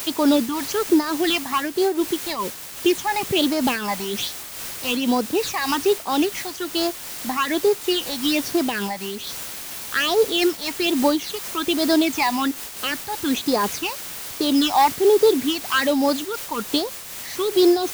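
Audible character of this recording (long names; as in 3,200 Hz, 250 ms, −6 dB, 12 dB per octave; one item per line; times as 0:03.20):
phaser sweep stages 8, 1.2 Hz, lowest notch 400–2,900 Hz
a quantiser's noise floor 6 bits, dither triangular
amplitude modulation by smooth noise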